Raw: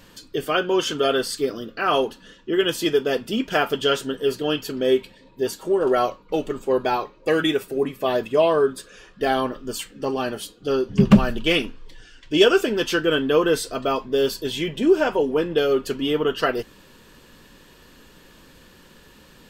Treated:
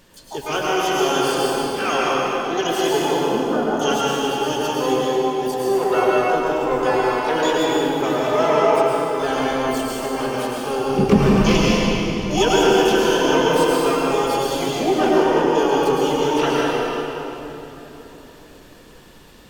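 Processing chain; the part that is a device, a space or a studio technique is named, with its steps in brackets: 3.08–3.76 steep low-pass 850 Hz 48 dB/oct; shimmer-style reverb (harmoniser +12 st -5 dB; reverb RT60 3.7 s, pre-delay 98 ms, DRR -5.5 dB); gain -4.5 dB

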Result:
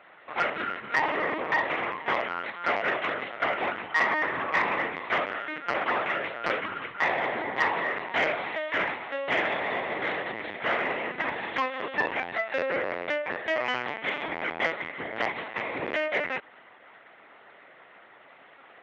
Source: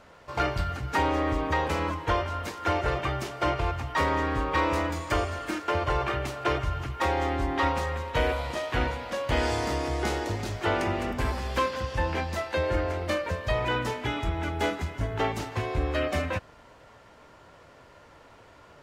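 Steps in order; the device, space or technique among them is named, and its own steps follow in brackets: talking toy (LPC vocoder at 8 kHz pitch kept; HPF 350 Hz 12 dB/oct; bell 2000 Hz +9.5 dB 0.54 oct; soft clip -13.5 dBFS, distortion -21 dB)

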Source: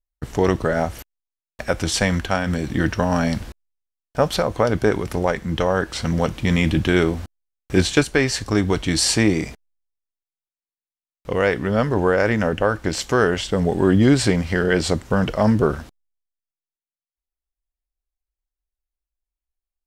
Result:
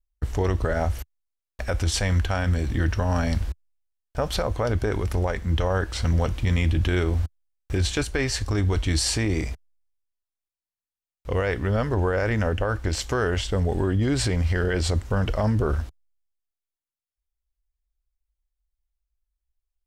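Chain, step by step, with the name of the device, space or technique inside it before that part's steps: car stereo with a boomy subwoofer (resonant low shelf 110 Hz +10.5 dB, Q 1.5; limiter -11 dBFS, peak gain reduction 9 dB); gain -3.5 dB

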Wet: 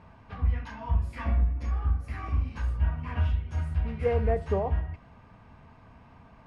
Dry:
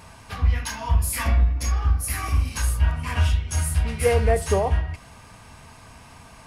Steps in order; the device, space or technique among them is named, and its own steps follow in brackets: phone in a pocket (LPF 3300 Hz 12 dB/oct; bell 210 Hz +3 dB 0.89 oct; high shelf 2100 Hz -11 dB); gain -6 dB

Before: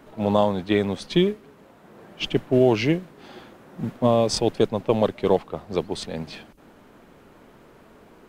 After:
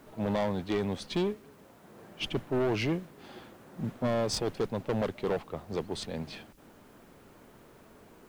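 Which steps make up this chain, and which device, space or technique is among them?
open-reel tape (soft clip -19 dBFS, distortion -8 dB; bell 95 Hz +3.5 dB 0.85 oct; white noise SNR 35 dB); gain -5 dB

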